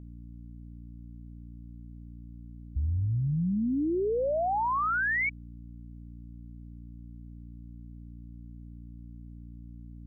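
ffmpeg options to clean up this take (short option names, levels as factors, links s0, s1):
-af "bandreject=f=58.5:t=h:w=4,bandreject=f=117:t=h:w=4,bandreject=f=175.5:t=h:w=4,bandreject=f=234:t=h:w=4,bandreject=f=292.5:t=h:w=4"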